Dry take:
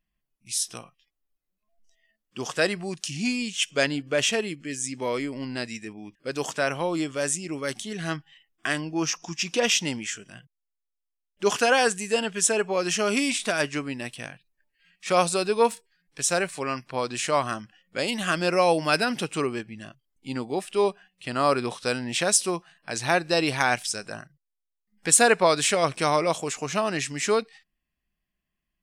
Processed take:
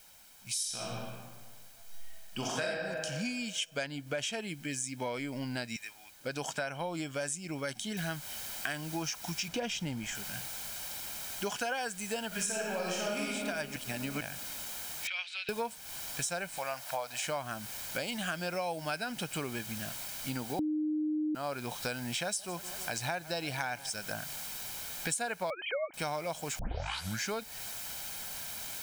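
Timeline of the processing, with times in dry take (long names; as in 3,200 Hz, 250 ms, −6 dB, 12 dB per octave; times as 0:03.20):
0:00.54–0:02.65: thrown reverb, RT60 1.5 s, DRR −6 dB
0:05.76–0:06.19: high-pass filter 1,300 Hz
0:07.97: noise floor change −58 dB −42 dB
0:09.48–0:10.15: spectral tilt −2 dB per octave
0:12.27–0:13.22: thrown reverb, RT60 1.8 s, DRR −4.5 dB
0:13.76–0:14.21: reverse
0:15.07–0:15.49: flat-topped band-pass 2,700 Hz, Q 1.7
0:16.58–0:17.27: low shelf with overshoot 470 Hz −9.5 dB, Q 3
0:20.59–0:21.35: beep over 306 Hz −7.5 dBFS
0:22.23–0:23.90: feedback echo with a swinging delay time 158 ms, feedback 70%, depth 128 cents, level −21 dB
0:25.50–0:25.94: three sine waves on the formant tracks
0:26.59: tape start 0.73 s
whole clip: comb filter 1.3 ms, depth 49%; downward compressor 6 to 1, threshold −33 dBFS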